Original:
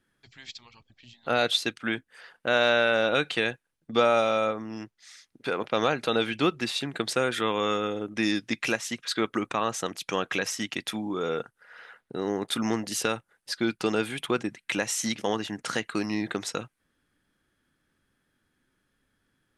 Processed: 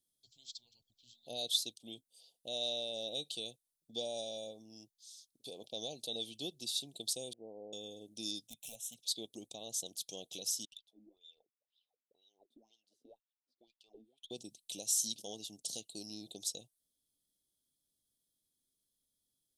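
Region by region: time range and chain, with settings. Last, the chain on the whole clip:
7.33–7.73 s: steep low-pass 860 Hz 48 dB/octave + bass shelf 170 Hz -12 dB
8.47–8.97 s: hard clipper -24 dBFS + static phaser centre 1.3 kHz, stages 6
10.65–14.31 s: peaking EQ 7.1 kHz -5 dB 1.2 oct + wah-wah 2 Hz 240–3600 Hz, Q 9 + valve stage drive 28 dB, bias 0.25
whole clip: elliptic band-stop 690–3500 Hz, stop band 80 dB; pre-emphasis filter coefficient 0.9

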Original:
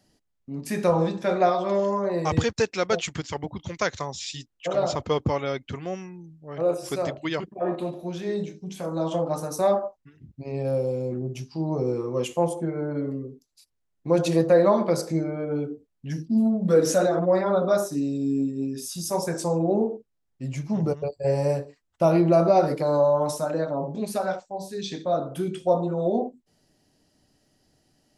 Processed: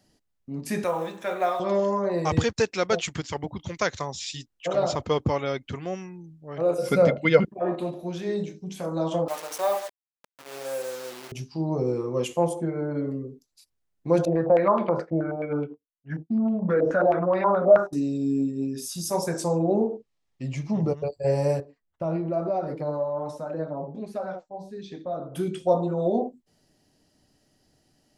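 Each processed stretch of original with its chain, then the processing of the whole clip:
0.84–1.60 s: companding laws mixed up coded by mu + high-pass 920 Hz 6 dB/octave + peaking EQ 4.8 kHz -13.5 dB 0.45 oct
6.78–7.45 s: peaking EQ 7.2 kHz -6 dB 0.48 oct + small resonant body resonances 200/490/1400/2100 Hz, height 17 dB, ringing for 55 ms
9.28–11.32 s: send-on-delta sampling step -32.5 dBFS + high-pass 640 Hz
14.25–17.93 s: expander -27 dBFS + compression 2:1, threshold -23 dBFS + step-sequenced low-pass 9.4 Hz 650–2800 Hz
19.93–20.98 s: distance through air 72 m + band-stop 1.5 kHz, Q 6.2 + tape noise reduction on one side only encoder only
21.60–25.34 s: low-pass 1.4 kHz 6 dB/octave + compression 2:1, threshold -22 dBFS + flange 1.2 Hz, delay 2.3 ms, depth 4.8 ms, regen +65%
whole clip: none

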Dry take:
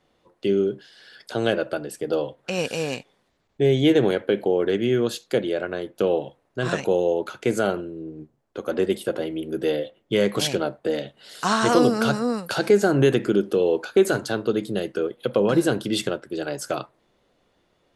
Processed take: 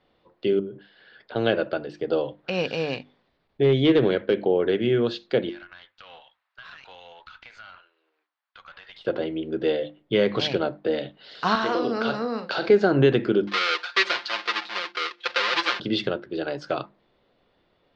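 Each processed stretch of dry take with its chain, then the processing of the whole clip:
0.59–1.36 s: compression, threshold -31 dBFS + distance through air 320 m
3.63–4.42 s: peaking EQ 810 Hz -6.5 dB 0.33 oct + hard clipper -11.5 dBFS
5.49–9.05 s: high-pass 1.1 kHz 24 dB/octave + compression 10:1, threshold -37 dBFS + valve stage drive 34 dB, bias 0.45
11.55–12.69 s: high-pass 240 Hz + compression 3:1, threshold -21 dBFS + doubling 44 ms -9 dB
13.47–15.80 s: square wave that keeps the level + high-pass 1.3 kHz + comb 5.7 ms, depth 72%
whole clip: steep low-pass 4.7 kHz 36 dB/octave; hum notches 50/100/150/200/250/300/350 Hz

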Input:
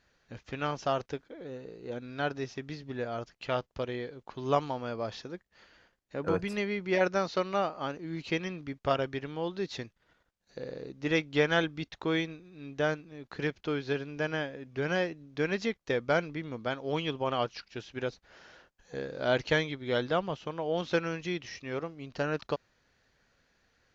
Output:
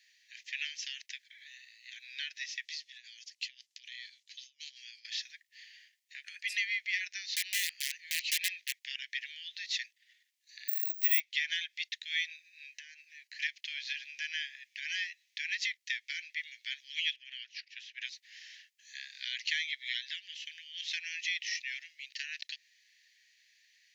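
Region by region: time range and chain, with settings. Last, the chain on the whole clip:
2.65–5.05 s: compressor with a negative ratio -37 dBFS, ratio -0.5 + band-pass filter 5.9 kHz, Q 1.1
7.34–8.85 s: compression 3:1, threshold -31 dBFS + integer overflow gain 30.5 dB
10.68–11.20 s: band-stop 4.6 kHz, Q 15 + careless resampling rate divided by 2×, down filtered, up zero stuff
12.42–13.40 s: high-pass 470 Hz + band-stop 3.5 kHz, Q 5.5 + compression 12:1, threshold -42 dBFS
17.16–18.02 s: high-pass 470 Hz + tilt EQ -4 dB/octave
whole clip: compression 5:1, threshold -30 dBFS; steep high-pass 1.8 kHz 96 dB/octave; trim +8.5 dB

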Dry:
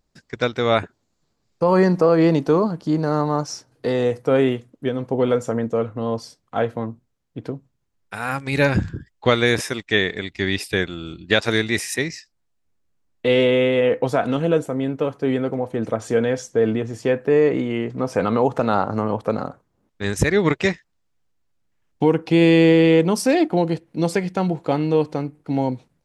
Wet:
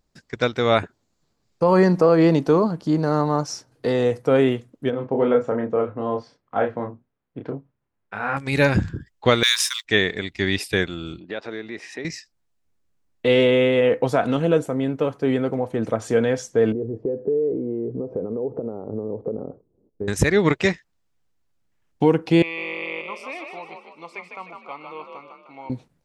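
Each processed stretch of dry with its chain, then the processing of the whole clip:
4.90–8.37 s: low-pass 2.1 kHz + bass shelf 120 Hz -11 dB + doubling 29 ms -4 dB
9.43–9.85 s: companding laws mixed up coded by A + steep high-pass 970 Hz 96 dB/octave + resonant high shelf 2.7 kHz +8 dB, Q 1.5
11.19–12.05 s: tilt EQ -3 dB/octave + compression 3:1, threshold -27 dBFS + band-pass 350–4300 Hz
16.72–20.08 s: compression 8:1, threshold -27 dBFS + resonant low-pass 430 Hz, resonance Q 3.2
22.42–25.70 s: two resonant band-passes 1.6 kHz, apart 1 oct + frequency-shifting echo 153 ms, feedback 47%, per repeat +44 Hz, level -5 dB
whole clip: none

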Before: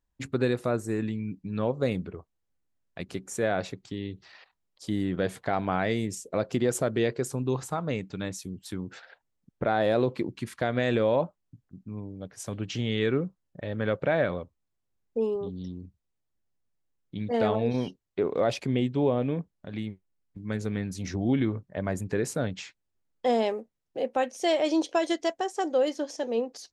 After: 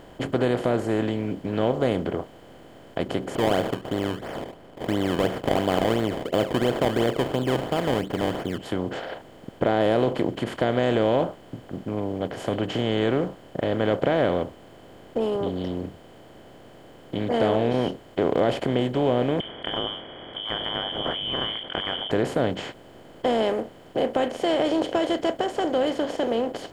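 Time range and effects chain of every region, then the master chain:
3.35–8.58 s: distance through air 140 m + decimation with a swept rate 22× 2.9 Hz
19.40–22.11 s: elliptic band-stop 350–910 Hz + frequency inversion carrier 3.3 kHz + level flattener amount 50%
whole clip: spectral levelling over time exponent 0.4; treble shelf 2.5 kHz -10.5 dB; band-stop 5.9 kHz, Q 15; trim -1.5 dB

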